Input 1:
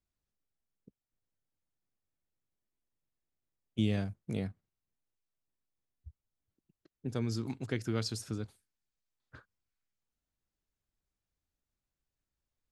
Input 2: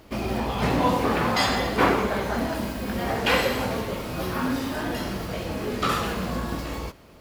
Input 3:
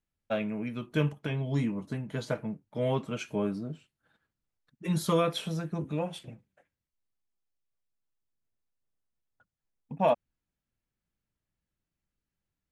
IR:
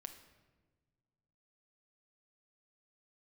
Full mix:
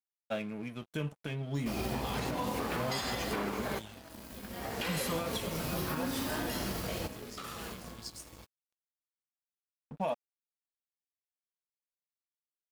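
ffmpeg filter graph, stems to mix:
-filter_complex "[0:a]equalizer=frequency=1600:width_type=o:width=2:gain=-11.5,flanger=delay=15:depth=3.6:speed=0.43,highshelf=frequency=1600:width_type=q:width=1.5:gain=12.5,volume=-16.5dB,asplit=2[link_01][link_02];[1:a]acompressor=threshold=-23dB:ratio=6,adelay=1550,volume=-4.5dB[link_03];[2:a]volume=-4dB[link_04];[link_02]apad=whole_len=386071[link_05];[link_03][link_05]sidechaincompress=threshold=-59dB:ratio=20:attack=44:release=876[link_06];[link_01][link_06][link_04]amix=inputs=3:normalize=0,highshelf=frequency=4900:gain=10.5,aeval=exprs='sgn(val(0))*max(abs(val(0))-0.00316,0)':channel_layout=same,alimiter=limit=-24dB:level=0:latency=1:release=167"

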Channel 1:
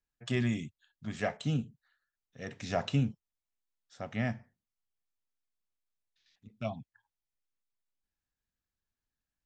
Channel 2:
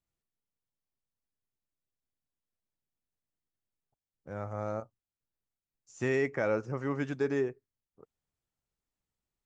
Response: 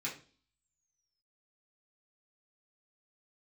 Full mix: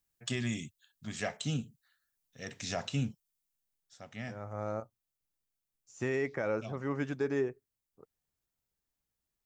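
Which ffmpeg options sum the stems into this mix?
-filter_complex "[0:a]crystalizer=i=3.5:c=0,volume=-3dB,afade=type=out:start_time=3.21:duration=0.73:silence=0.446684,asplit=2[link_01][link_02];[1:a]volume=-1dB[link_03];[link_02]apad=whole_len=416776[link_04];[link_03][link_04]sidechaincompress=threshold=-43dB:ratio=8:attack=48:release=632[link_05];[link_01][link_05]amix=inputs=2:normalize=0,alimiter=limit=-22dB:level=0:latency=1:release=151"

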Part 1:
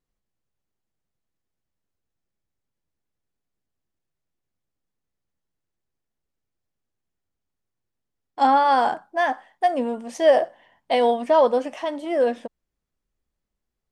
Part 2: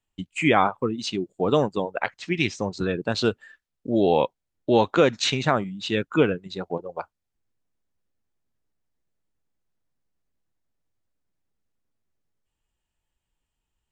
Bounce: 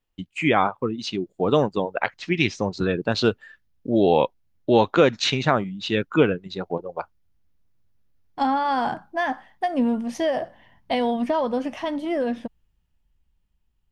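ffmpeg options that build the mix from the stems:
ffmpeg -i stem1.wav -i stem2.wav -filter_complex "[0:a]acompressor=threshold=-20dB:ratio=4,asubboost=boost=6.5:cutoff=180,volume=-2dB[link_01];[1:a]volume=-0.5dB[link_02];[link_01][link_02]amix=inputs=2:normalize=0,equalizer=frequency=7900:width_type=o:width=0.47:gain=-9,dynaudnorm=framelen=140:gausssize=21:maxgain=4dB" out.wav

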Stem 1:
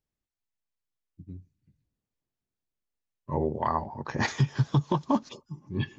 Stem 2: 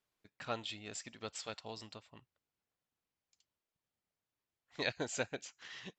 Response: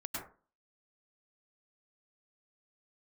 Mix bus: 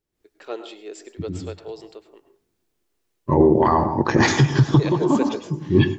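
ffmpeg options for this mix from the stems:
-filter_complex "[0:a]alimiter=limit=-22dB:level=0:latency=1:release=20,volume=0.5dB,asplit=2[link_01][link_02];[link_02]volume=-9dB[link_03];[1:a]highpass=frequency=420:width_type=q:width=4.9,volume=-14dB,asplit=3[link_04][link_05][link_06];[link_05]volume=-8dB[link_07];[link_06]apad=whole_len=264031[link_08];[link_01][link_08]sidechaincompress=threshold=-51dB:ratio=8:attack=7.3:release=248[link_09];[2:a]atrim=start_sample=2205[link_10];[link_03][link_07]amix=inputs=2:normalize=0[link_11];[link_11][link_10]afir=irnorm=-1:irlink=0[link_12];[link_09][link_04][link_12]amix=inputs=3:normalize=0,equalizer=frequency=340:width_type=o:width=0.44:gain=10.5,dynaudnorm=framelen=120:gausssize=3:maxgain=12.5dB"

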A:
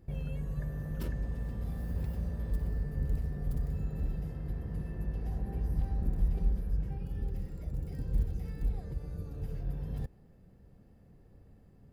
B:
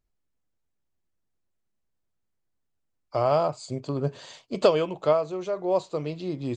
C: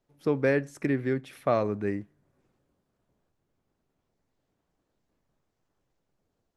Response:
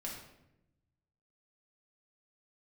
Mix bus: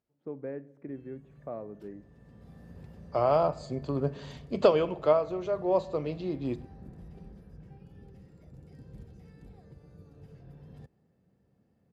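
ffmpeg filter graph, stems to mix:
-filter_complex "[0:a]adelay=800,volume=-7.5dB[link_01];[1:a]lowpass=frequency=2800:poles=1,volume=-2.5dB,asplit=2[link_02][link_03];[link_03]volume=-12.5dB[link_04];[2:a]firequalizer=gain_entry='entry(620,0);entry(1300,-9);entry(5700,-30)':delay=0.05:min_phase=1,volume=-14dB,asplit=3[link_05][link_06][link_07];[link_06]volume=-15dB[link_08];[link_07]apad=whole_len=565710[link_09];[link_01][link_09]sidechaincompress=threshold=-47dB:ratio=8:attack=23:release=951[link_10];[3:a]atrim=start_sample=2205[link_11];[link_04][link_08]amix=inputs=2:normalize=0[link_12];[link_12][link_11]afir=irnorm=-1:irlink=0[link_13];[link_10][link_02][link_05][link_13]amix=inputs=4:normalize=0,highpass=120,lowpass=7900"

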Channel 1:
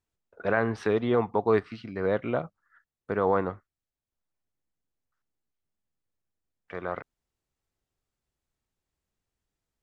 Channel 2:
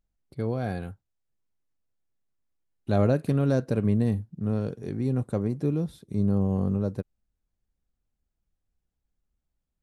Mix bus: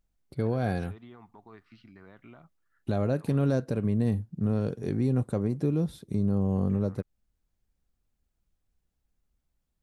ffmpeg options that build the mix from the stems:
ffmpeg -i stem1.wav -i stem2.wav -filter_complex "[0:a]equalizer=frequency=500:width=2.5:gain=-13.5,acompressor=threshold=-31dB:ratio=6,alimiter=level_in=3dB:limit=-24dB:level=0:latency=1:release=52,volume=-3dB,volume=-12.5dB[link_01];[1:a]volume=3dB[link_02];[link_01][link_02]amix=inputs=2:normalize=0,alimiter=limit=-17.5dB:level=0:latency=1:release=283" out.wav

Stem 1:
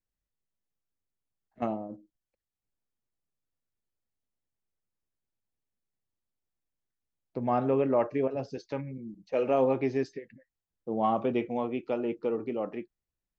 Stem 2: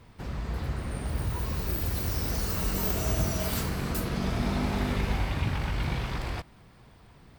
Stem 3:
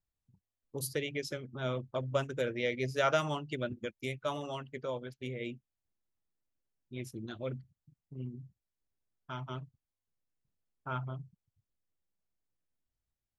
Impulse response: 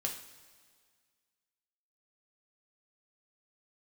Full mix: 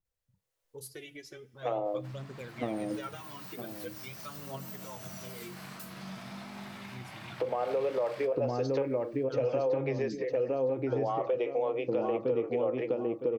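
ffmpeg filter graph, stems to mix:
-filter_complex "[0:a]acompressor=threshold=-38dB:ratio=2.5,equalizer=frequency=125:width_type=o:width=0.33:gain=11,equalizer=frequency=315:width_type=o:width=0.33:gain=10,equalizer=frequency=500:width_type=o:width=0.33:gain=11,dynaudnorm=framelen=120:gausssize=7:maxgain=11dB,adelay=50,volume=0dB,asplit=2[link_01][link_02];[link_02]volume=-9dB[link_03];[1:a]highpass=frequency=140:width=0.5412,highpass=frequency=140:width=1.3066,acrossover=split=240[link_04][link_05];[link_05]acompressor=threshold=-36dB:ratio=6[link_06];[link_04][link_06]amix=inputs=2:normalize=0,adelay=1850,volume=-7.5dB,asplit=2[link_07][link_08];[link_08]volume=-9dB[link_09];[2:a]alimiter=limit=-23.5dB:level=0:latency=1:release=426,aphaser=in_gain=1:out_gain=1:delay=3.2:decay=0.71:speed=0.44:type=triangular,volume=-12dB,asplit=3[link_10][link_11][link_12];[link_11]volume=-12.5dB[link_13];[link_12]apad=whole_len=407116[link_14];[link_07][link_14]sidechaincompress=threshold=-50dB:ratio=8:attack=37:release=181[link_15];[link_01][link_15]amix=inputs=2:normalize=0,highpass=frequency=480:width=0.5412,highpass=frequency=480:width=1.3066,alimiter=limit=-19dB:level=0:latency=1:release=62,volume=0dB[link_16];[3:a]atrim=start_sample=2205[link_17];[link_09][link_13]amix=inputs=2:normalize=0[link_18];[link_18][link_17]afir=irnorm=-1:irlink=0[link_19];[link_03]aecho=0:1:960|1920|2880|3840:1|0.26|0.0676|0.0176[link_20];[link_10][link_16][link_19][link_20]amix=inputs=4:normalize=0,acompressor=threshold=-29dB:ratio=2"

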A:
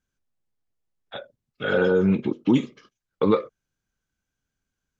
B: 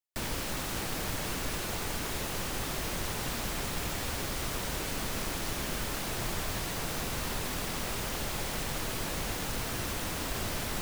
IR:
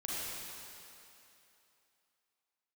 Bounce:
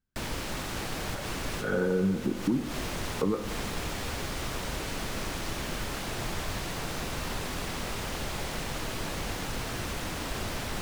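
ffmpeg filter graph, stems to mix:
-filter_complex "[0:a]lowpass=1300,equalizer=frequency=650:width_type=o:width=1.4:gain=-7,acompressor=threshold=-23dB:ratio=6,volume=-2dB,asplit=3[link_01][link_02][link_03];[link_02]volume=-11dB[link_04];[1:a]highshelf=frequency=9600:gain=-10,volume=0dB,asplit=2[link_05][link_06];[link_06]volume=-15dB[link_07];[link_03]apad=whole_len=476962[link_08];[link_05][link_08]sidechaincompress=threshold=-45dB:ratio=8:attack=35:release=131[link_09];[2:a]atrim=start_sample=2205[link_10];[link_04][link_07]amix=inputs=2:normalize=0[link_11];[link_11][link_10]afir=irnorm=-1:irlink=0[link_12];[link_01][link_09][link_12]amix=inputs=3:normalize=0"

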